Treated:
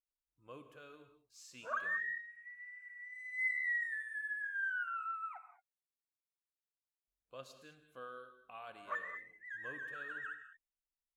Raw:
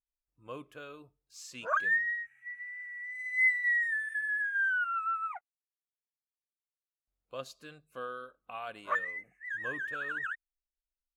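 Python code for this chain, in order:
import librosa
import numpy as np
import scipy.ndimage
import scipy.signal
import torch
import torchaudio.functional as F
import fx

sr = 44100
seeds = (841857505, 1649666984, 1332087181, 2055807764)

y = fx.rev_gated(x, sr, seeds[0], gate_ms=240, shape='flat', drr_db=8.5)
y = y * librosa.db_to_amplitude(-9.0)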